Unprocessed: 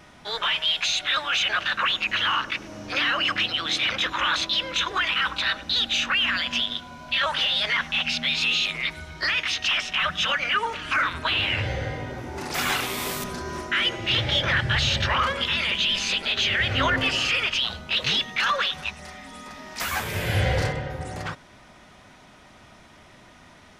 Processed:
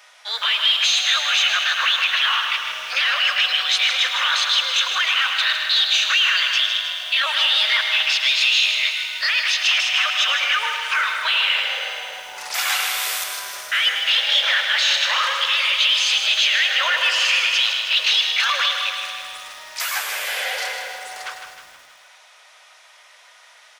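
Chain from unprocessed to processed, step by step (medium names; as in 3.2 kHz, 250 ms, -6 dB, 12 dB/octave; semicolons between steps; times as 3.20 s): steep high-pass 470 Hz 48 dB/octave; tilt shelf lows -8 dB; on a send: feedback delay 155 ms, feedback 52%, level -7.5 dB; on the sum: bit-crushed delay 107 ms, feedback 80%, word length 7-bit, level -10.5 dB; trim -1.5 dB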